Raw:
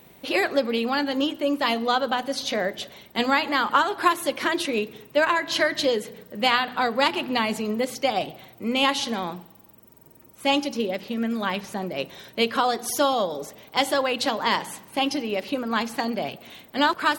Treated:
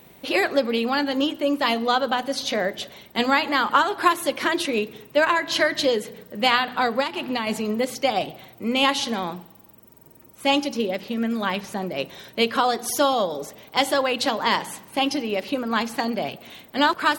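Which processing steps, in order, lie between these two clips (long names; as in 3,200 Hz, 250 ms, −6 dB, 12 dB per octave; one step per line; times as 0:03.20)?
0:07.00–0:07.47: downward compressor 10 to 1, threshold −23 dBFS, peak gain reduction 9 dB
level +1.5 dB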